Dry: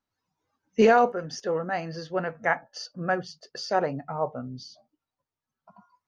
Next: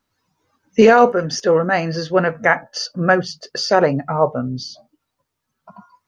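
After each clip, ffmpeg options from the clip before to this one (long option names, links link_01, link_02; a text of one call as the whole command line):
ffmpeg -i in.wav -af "equalizer=frequency=770:width_type=o:width=0.37:gain=-4,alimiter=level_in=14dB:limit=-1dB:release=50:level=0:latency=1,volume=-1dB" out.wav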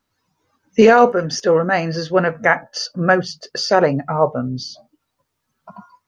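ffmpeg -i in.wav -af "dynaudnorm=framelen=490:gausssize=3:maxgain=3.5dB" out.wav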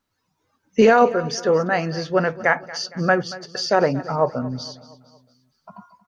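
ffmpeg -i in.wav -af "aecho=1:1:231|462|693|924:0.126|0.0617|0.0302|0.0148,volume=-3.5dB" out.wav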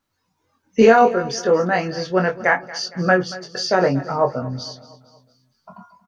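ffmpeg -i in.wav -filter_complex "[0:a]asplit=2[link_01][link_02];[link_02]adelay=22,volume=-4.5dB[link_03];[link_01][link_03]amix=inputs=2:normalize=0" out.wav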